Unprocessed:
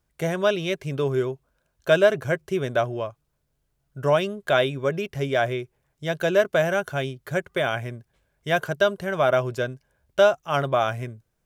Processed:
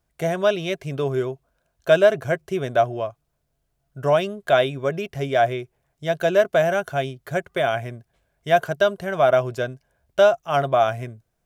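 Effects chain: bell 690 Hz +8.5 dB 0.2 oct

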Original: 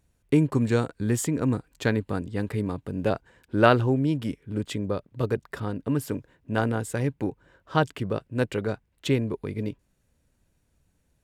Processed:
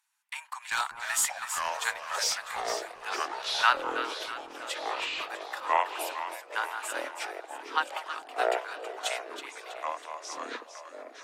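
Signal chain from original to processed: steep high-pass 830 Hz 72 dB/oct; 0.71–1.3 sample leveller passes 2; split-band echo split 1100 Hz, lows 0.198 s, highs 0.324 s, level -9.5 dB; echoes that change speed 0.559 s, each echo -6 st, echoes 3; AAC 48 kbps 44100 Hz

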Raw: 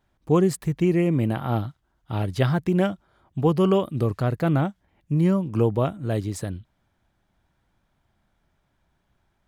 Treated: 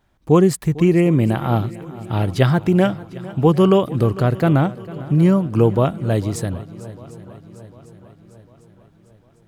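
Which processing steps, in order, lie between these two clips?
swung echo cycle 0.75 s, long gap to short 1.5:1, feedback 51%, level -18.5 dB; gain +6 dB

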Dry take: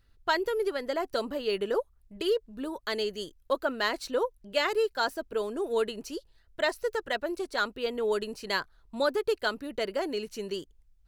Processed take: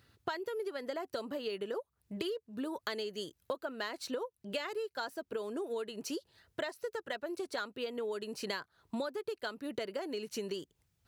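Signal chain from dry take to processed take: compressor 16:1, threshold -41 dBFS, peak gain reduction 20.5 dB; HPF 91 Hz 24 dB/oct; gain +6.5 dB

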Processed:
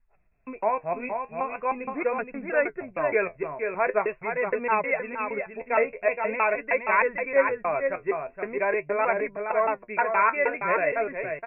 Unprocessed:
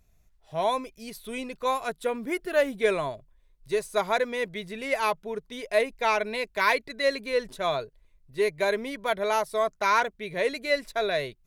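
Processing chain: slices in reverse order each 0.156 s, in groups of 3; brick-wall FIR low-pass 2700 Hz; low shelf 230 Hz -8.5 dB; echo 0.47 s -6 dB; flange 0.43 Hz, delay 4 ms, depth 9.2 ms, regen +56%; gain +6 dB

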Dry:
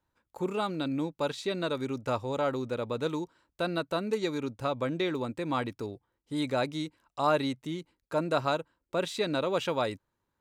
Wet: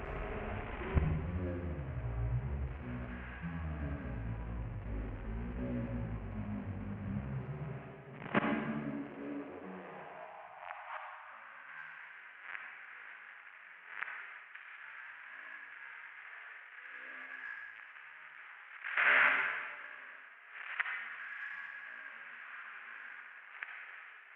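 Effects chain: delta modulation 32 kbps, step -28 dBFS; notches 50/100/150/200/250/300/350/400 Hz; gate with hold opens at -28 dBFS; spectral delete 4.33–4.84, 270–1400 Hz; low shelf 82 Hz +9 dB; harmonic-percussive split percussive -18 dB; high-pass sweep 140 Hz -> 3900 Hz, 2.81–5.03; in parallel at -12 dB: one-sided clip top -32 dBFS; on the sum: flipped gate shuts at -32 dBFS, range -27 dB; reverb RT60 0.60 s, pre-delay 22 ms, DRR 0.5 dB; speed mistake 78 rpm record played at 33 rpm; gain +14.5 dB

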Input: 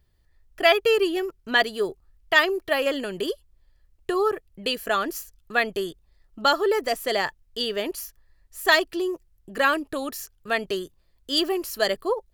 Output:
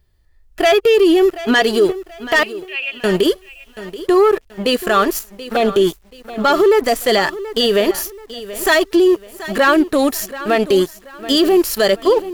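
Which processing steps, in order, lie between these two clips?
harmonic-percussive split harmonic +9 dB; 5.19–5.87 envelope flanger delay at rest 9.3 ms, full sweep at -18 dBFS; sample leveller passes 2; 2.43–3.04 band-pass 2600 Hz, Q 15; limiter -9 dBFS, peak gain reduction 11.5 dB; lo-fi delay 0.731 s, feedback 35%, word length 7-bit, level -15 dB; gain +2.5 dB

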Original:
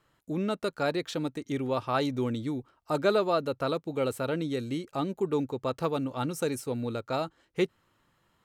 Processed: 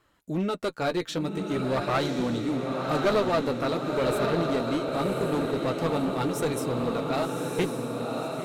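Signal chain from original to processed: flange 0.42 Hz, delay 2.6 ms, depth 10 ms, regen -32%; diffused feedback echo 1.076 s, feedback 53%, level -3.5 dB; one-sided clip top -30.5 dBFS; gain +6.5 dB

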